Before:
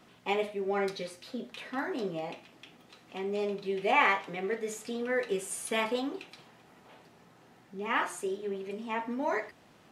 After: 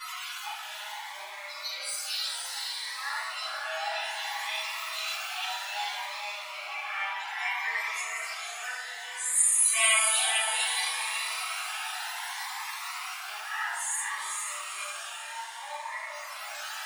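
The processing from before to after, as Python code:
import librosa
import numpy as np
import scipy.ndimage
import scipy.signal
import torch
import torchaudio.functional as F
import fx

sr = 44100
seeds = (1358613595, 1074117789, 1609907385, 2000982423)

p1 = x + 0.5 * 10.0 ** (-35.5 / 20.0) * np.sign(x)
p2 = scipy.signal.sosfilt(scipy.signal.butter(6, 830.0, 'highpass', fs=sr, output='sos'), p1)
p3 = fx.high_shelf(p2, sr, hz=6100.0, db=8.0)
p4 = fx.auto_swell(p3, sr, attack_ms=504.0)
p5 = fx.stretch_vocoder_free(p4, sr, factor=1.7)
p6 = fx.spec_topn(p5, sr, count=64)
p7 = p6 + fx.echo_diffused(p6, sr, ms=485, feedback_pct=50, wet_db=-3.0, dry=0)
p8 = fx.room_shoebox(p7, sr, seeds[0], volume_m3=210.0, walls='mixed', distance_m=5.9)
p9 = fx.notch_cascade(p8, sr, direction='rising', hz=0.62)
y = p9 * 10.0 ** (-2.5 / 20.0)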